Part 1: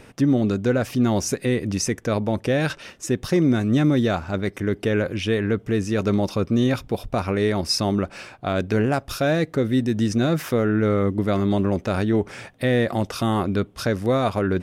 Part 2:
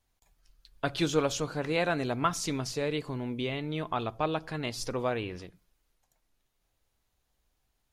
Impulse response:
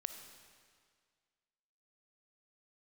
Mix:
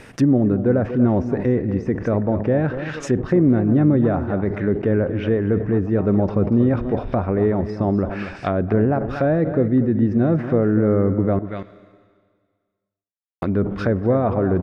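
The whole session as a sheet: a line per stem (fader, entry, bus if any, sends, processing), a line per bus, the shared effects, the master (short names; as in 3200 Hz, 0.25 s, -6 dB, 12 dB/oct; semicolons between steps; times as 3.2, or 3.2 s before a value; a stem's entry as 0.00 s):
-0.5 dB, 0.00 s, muted 11.39–13.42, send -4 dB, echo send -8 dB, bell 1800 Hz +5.5 dB 0.61 oct; sustainer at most 110 dB/s
-8.0 dB, 1.80 s, no send, no echo send, dry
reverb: on, RT60 1.9 s, pre-delay 15 ms
echo: echo 0.238 s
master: treble ducked by the level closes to 810 Hz, closed at -16.5 dBFS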